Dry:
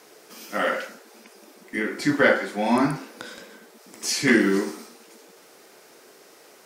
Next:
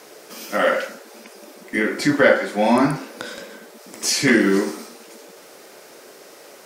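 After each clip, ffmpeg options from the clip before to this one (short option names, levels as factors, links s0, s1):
-filter_complex "[0:a]asplit=2[s0][s1];[s1]alimiter=limit=0.15:level=0:latency=1:release=445,volume=1.33[s2];[s0][s2]amix=inputs=2:normalize=0,equalizer=f=570:t=o:w=0.24:g=5.5,volume=0.891"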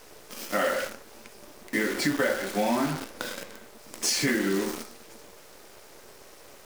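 -af "acompressor=threshold=0.1:ratio=6,acrusher=bits=6:dc=4:mix=0:aa=0.000001,volume=0.75"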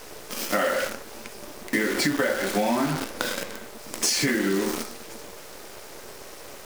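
-af "acompressor=threshold=0.0316:ratio=3,volume=2.51"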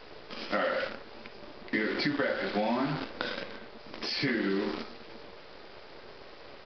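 -af "aresample=11025,aresample=44100,volume=0.531"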